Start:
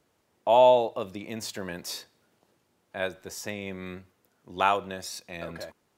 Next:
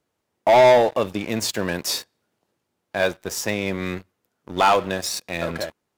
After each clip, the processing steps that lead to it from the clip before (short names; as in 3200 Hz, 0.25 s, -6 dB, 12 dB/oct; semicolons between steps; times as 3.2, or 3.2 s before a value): sample leveller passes 3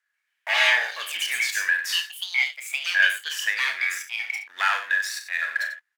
resonant high-pass 1700 Hz, resonance Q 9.9; loudspeakers at several distances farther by 14 m -9 dB, 32 m -11 dB; echoes that change speed 0.136 s, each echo +5 st, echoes 2; gain -7 dB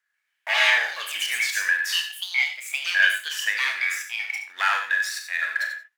non-linear reverb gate 0.11 s rising, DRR 9 dB